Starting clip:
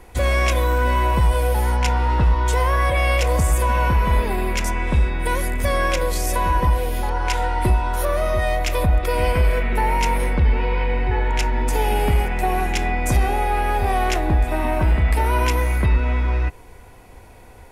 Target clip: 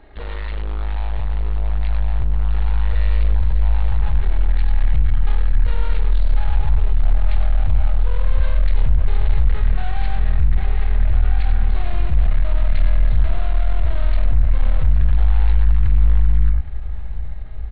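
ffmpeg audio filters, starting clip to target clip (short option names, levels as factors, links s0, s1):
-filter_complex "[0:a]asplit=2[s0][s1];[s1]adelay=31,volume=0.316[s2];[s0][s2]amix=inputs=2:normalize=0,asplit=2[s3][s4];[s4]aecho=0:1:98:0.282[s5];[s3][s5]amix=inputs=2:normalize=0,aeval=exprs='(tanh(31.6*val(0)+0.55)-tanh(0.55))/31.6':c=same,aresample=11025,aresample=44100,asetrate=37084,aresample=44100,atempo=1.18921,asplit=2[s6][s7];[s7]aecho=0:1:817|1634|2451|3268|4085:0.15|0.0853|0.0486|0.0277|0.0158[s8];[s6][s8]amix=inputs=2:normalize=0,asubboost=boost=10:cutoff=99"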